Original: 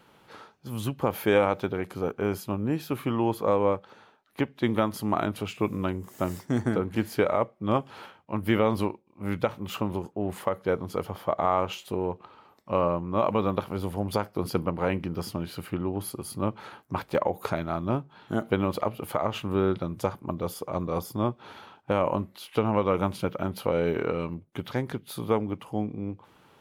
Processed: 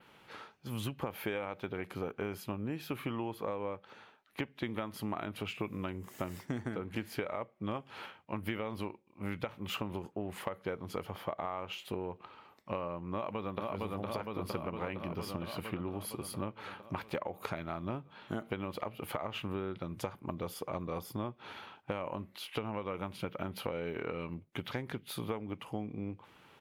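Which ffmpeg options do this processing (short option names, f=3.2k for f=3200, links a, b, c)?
-filter_complex "[0:a]asplit=2[a][b];[b]afade=t=in:st=13.12:d=0.01,afade=t=out:st=13.75:d=0.01,aecho=0:1:460|920|1380|1840|2300|2760|3220|3680|4140|4600|5060:0.841395|0.546907|0.355489|0.231068|0.150194|0.0976263|0.0634571|0.0412471|0.0268106|0.0174269|0.0113275[c];[a][c]amix=inputs=2:normalize=0,equalizer=f=2.4k:w=1.1:g=6.5,acompressor=threshold=-29dB:ratio=10,adynamicequalizer=threshold=0.00141:dfrequency=6900:dqfactor=1.1:tfrequency=6900:tqfactor=1.1:attack=5:release=100:ratio=0.375:range=2.5:mode=cutabove:tftype=bell,volume=-4dB"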